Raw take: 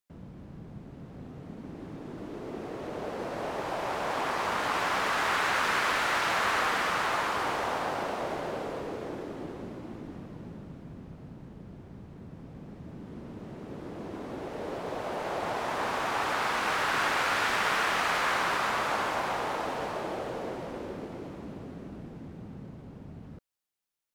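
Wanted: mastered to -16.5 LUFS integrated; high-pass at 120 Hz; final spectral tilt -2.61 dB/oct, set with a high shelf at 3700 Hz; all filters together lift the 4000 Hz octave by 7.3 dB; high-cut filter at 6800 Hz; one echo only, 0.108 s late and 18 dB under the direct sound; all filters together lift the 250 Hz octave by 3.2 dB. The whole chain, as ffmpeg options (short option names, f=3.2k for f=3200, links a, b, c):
-af "highpass=120,lowpass=6.8k,equalizer=f=250:t=o:g=4.5,highshelf=f=3.7k:g=4.5,equalizer=f=4k:t=o:g=7,aecho=1:1:108:0.126,volume=11dB"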